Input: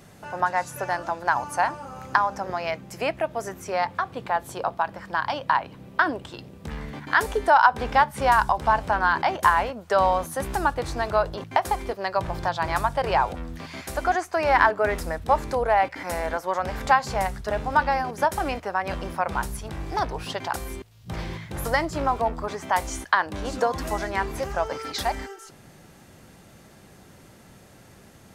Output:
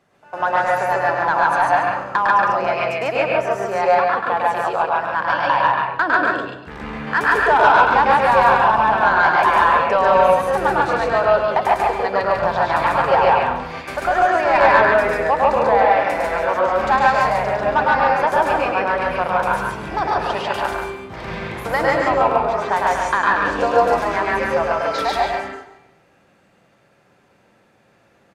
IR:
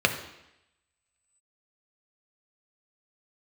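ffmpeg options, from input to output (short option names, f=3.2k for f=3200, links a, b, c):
-filter_complex "[0:a]aecho=1:1:105|145.8:0.708|0.891,agate=range=-13dB:threshold=-34dB:ratio=16:detection=peak,asplit=2[a][b];[b]highpass=f=720:p=1,volume=16dB,asoftclip=type=tanh:threshold=-0.5dB[c];[a][c]amix=inputs=2:normalize=0,lowpass=f=1.5k:p=1,volume=-6dB,asplit=2[d][e];[1:a]atrim=start_sample=2205,adelay=133[f];[e][f]afir=irnorm=-1:irlink=0,volume=-14dB[g];[d][g]amix=inputs=2:normalize=0,volume=-3.5dB"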